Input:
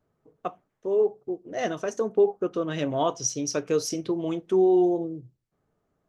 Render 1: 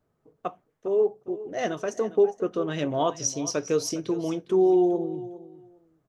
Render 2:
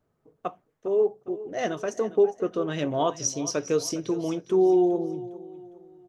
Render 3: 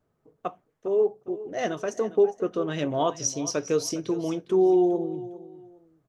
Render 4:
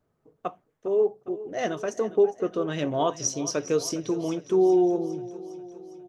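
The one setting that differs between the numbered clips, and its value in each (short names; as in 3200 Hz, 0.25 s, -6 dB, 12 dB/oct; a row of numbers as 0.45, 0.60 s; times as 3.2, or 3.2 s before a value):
feedback echo, feedback: 17, 38, 25, 58%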